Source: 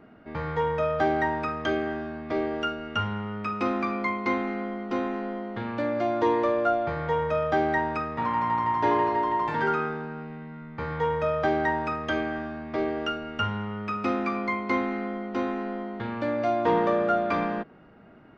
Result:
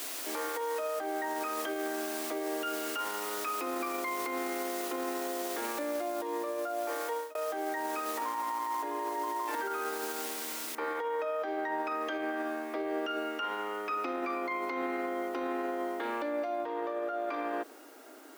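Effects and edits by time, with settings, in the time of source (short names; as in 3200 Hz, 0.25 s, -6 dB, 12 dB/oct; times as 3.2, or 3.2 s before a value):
6.83–7.35 fade out
10.75 noise floor step -41 dB -61 dB
whole clip: elliptic high-pass 280 Hz, stop band 40 dB; negative-ratio compressor -30 dBFS, ratio -1; limiter -26 dBFS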